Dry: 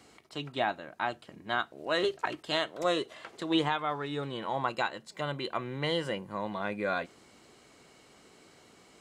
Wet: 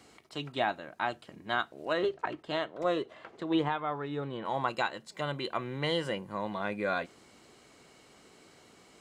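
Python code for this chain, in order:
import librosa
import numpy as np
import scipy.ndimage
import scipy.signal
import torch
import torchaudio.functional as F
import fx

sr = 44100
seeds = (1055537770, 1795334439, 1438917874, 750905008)

y = fx.lowpass(x, sr, hz=1500.0, slope=6, at=(1.92, 4.44), fade=0.02)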